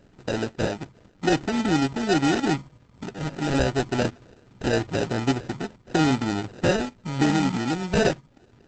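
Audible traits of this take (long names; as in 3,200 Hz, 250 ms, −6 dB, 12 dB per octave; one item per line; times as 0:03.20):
aliases and images of a low sample rate 1,100 Hz, jitter 0%
Opus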